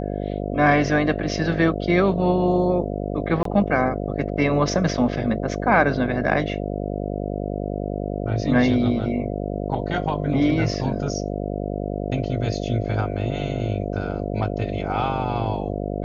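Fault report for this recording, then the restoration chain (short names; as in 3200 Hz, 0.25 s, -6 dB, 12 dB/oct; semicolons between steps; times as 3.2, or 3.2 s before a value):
buzz 50 Hz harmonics 14 -27 dBFS
3.43–3.45 gap 23 ms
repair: de-hum 50 Hz, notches 14; interpolate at 3.43, 23 ms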